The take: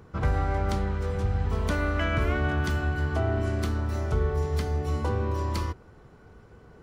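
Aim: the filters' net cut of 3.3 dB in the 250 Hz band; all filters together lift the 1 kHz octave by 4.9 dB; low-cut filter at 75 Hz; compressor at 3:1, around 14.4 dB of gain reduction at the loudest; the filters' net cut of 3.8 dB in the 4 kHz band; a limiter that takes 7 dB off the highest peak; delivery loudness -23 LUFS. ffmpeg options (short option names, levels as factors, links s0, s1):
-af "highpass=75,equalizer=f=250:t=o:g=-5,equalizer=f=1000:t=o:g=7,equalizer=f=4000:t=o:g=-6,acompressor=threshold=0.00708:ratio=3,volume=13.3,alimiter=limit=0.211:level=0:latency=1"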